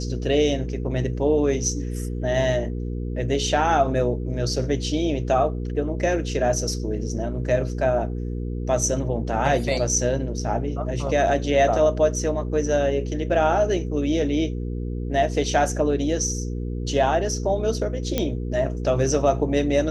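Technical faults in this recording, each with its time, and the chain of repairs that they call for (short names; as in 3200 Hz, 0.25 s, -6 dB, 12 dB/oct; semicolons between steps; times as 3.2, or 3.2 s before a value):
hum 60 Hz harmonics 8 -28 dBFS
18.18 pop -8 dBFS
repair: de-click; de-hum 60 Hz, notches 8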